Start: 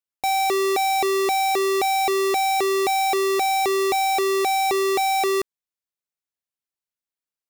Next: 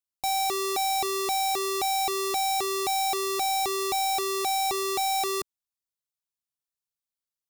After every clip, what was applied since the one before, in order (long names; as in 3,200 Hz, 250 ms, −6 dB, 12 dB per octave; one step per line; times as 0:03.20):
octave-band graphic EQ 250/500/2,000 Hz −6/−11/−10 dB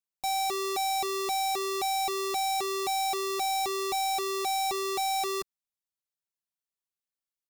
comb filter 5.2 ms, depth 38%
level −5 dB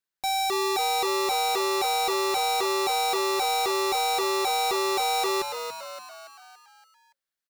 graphic EQ with 15 bands 400 Hz +4 dB, 1,600 Hz +10 dB, 4,000 Hz +4 dB
on a send: echo with shifted repeats 284 ms, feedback 53%, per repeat +89 Hz, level −8 dB
on the sum: level +1 dB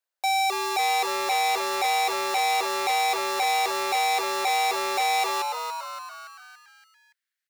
high-pass filter sweep 600 Hz → 1,800 Hz, 0:05.14–0:06.81
saturating transformer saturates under 2,500 Hz